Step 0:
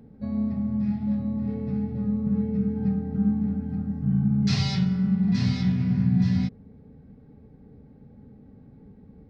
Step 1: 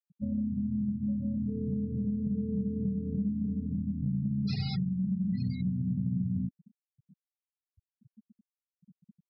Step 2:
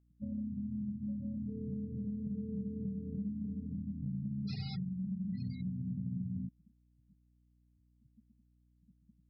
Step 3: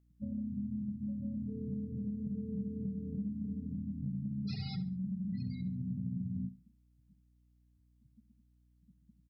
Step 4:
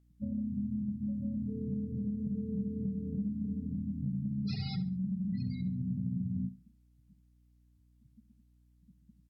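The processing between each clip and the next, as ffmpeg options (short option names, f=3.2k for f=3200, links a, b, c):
-af "afftfilt=real='re*gte(hypot(re,im),0.0501)':imag='im*gte(hypot(re,im),0.0501)':win_size=1024:overlap=0.75,acompressor=threshold=-29dB:ratio=4"
-af "aeval=exprs='val(0)+0.000891*(sin(2*PI*60*n/s)+sin(2*PI*2*60*n/s)/2+sin(2*PI*3*60*n/s)/3+sin(2*PI*4*60*n/s)/4+sin(2*PI*5*60*n/s)/5)':c=same,volume=-7.5dB"
-af "aecho=1:1:69|138|207:0.178|0.0462|0.012,volume=1dB"
-af "volume=3dB" -ar 48000 -c:a libvorbis -b:a 96k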